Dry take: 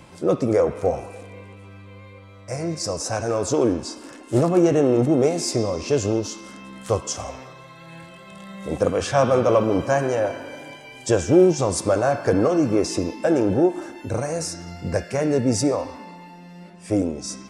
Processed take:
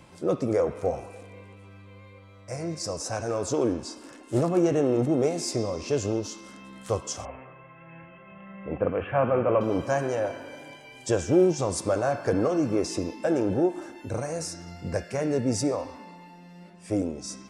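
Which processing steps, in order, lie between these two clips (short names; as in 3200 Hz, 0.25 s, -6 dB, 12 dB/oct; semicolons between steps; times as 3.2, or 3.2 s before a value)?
7.25–9.61 steep low-pass 2900 Hz 72 dB/oct; gain -5.5 dB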